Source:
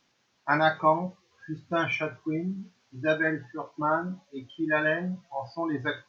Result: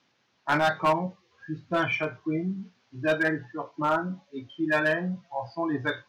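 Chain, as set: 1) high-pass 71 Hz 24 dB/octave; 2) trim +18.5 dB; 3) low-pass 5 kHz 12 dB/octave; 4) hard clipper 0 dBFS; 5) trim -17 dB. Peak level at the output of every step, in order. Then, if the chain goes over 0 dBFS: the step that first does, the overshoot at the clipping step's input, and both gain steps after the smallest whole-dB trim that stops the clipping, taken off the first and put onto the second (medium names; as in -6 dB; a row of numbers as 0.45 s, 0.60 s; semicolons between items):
-10.0 dBFS, +8.5 dBFS, +8.5 dBFS, 0.0 dBFS, -17.0 dBFS; step 2, 8.5 dB; step 2 +9.5 dB, step 5 -8 dB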